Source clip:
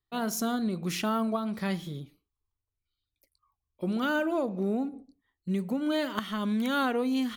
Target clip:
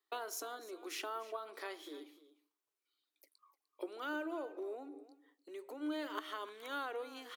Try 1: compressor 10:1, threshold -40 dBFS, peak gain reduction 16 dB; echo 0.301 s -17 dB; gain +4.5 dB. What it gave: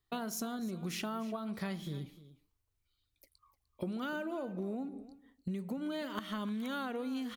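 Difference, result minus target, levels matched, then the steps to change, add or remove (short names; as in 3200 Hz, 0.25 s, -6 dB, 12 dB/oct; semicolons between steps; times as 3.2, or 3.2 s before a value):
250 Hz band +5.0 dB
add after compressor: rippled Chebyshev high-pass 290 Hz, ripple 3 dB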